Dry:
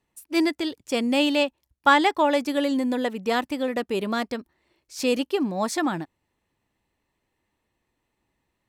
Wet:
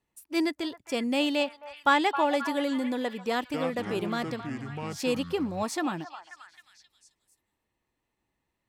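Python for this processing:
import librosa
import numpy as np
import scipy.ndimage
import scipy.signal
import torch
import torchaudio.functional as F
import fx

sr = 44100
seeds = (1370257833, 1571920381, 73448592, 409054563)

y = fx.echo_pitch(x, sr, ms=237, semitones=-7, count=2, db_per_echo=-6.0, at=(3.3, 5.63))
y = fx.echo_stepped(y, sr, ms=266, hz=1000.0, octaves=0.7, feedback_pct=70, wet_db=-8.0)
y = y * 10.0 ** (-5.0 / 20.0)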